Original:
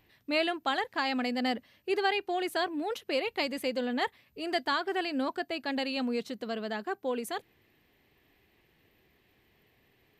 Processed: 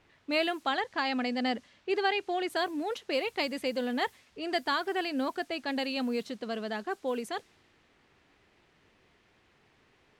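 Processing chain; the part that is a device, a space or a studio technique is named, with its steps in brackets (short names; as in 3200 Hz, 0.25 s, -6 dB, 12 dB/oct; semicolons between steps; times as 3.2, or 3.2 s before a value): notches 60/120 Hz; cassette deck with a dynamic noise filter (white noise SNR 27 dB; low-pass opened by the level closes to 2500 Hz, open at -27.5 dBFS); 0.67–2.5 LPF 6600 Hz 12 dB/oct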